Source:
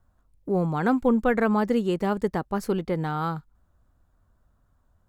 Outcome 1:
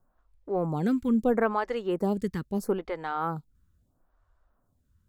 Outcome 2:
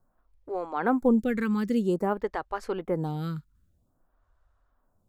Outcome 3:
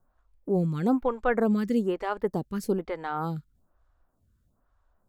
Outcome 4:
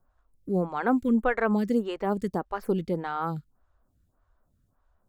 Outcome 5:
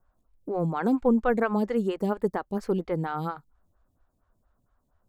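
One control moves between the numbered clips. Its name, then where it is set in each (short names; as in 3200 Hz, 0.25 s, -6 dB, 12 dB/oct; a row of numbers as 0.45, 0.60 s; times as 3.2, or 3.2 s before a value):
photocell phaser, rate: 0.76, 0.51, 1.1, 1.7, 4.3 Hz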